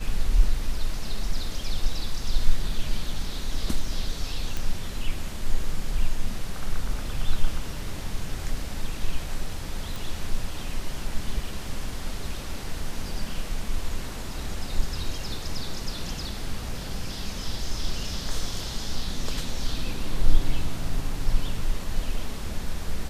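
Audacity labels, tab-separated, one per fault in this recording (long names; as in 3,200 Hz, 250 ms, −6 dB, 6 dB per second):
4.570000	4.570000	click −15 dBFS
9.960000	9.960000	click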